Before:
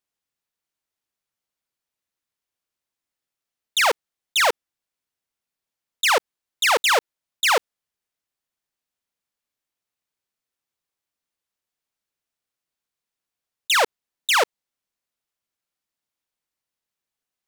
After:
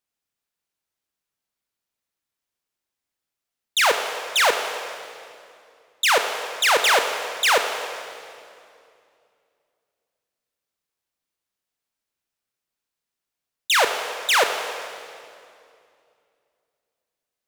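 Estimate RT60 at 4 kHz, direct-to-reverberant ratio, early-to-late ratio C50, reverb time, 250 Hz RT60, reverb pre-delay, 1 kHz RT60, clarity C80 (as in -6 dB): 2.1 s, 5.0 dB, 6.5 dB, 2.5 s, 3.0 s, 16 ms, 2.4 s, 7.5 dB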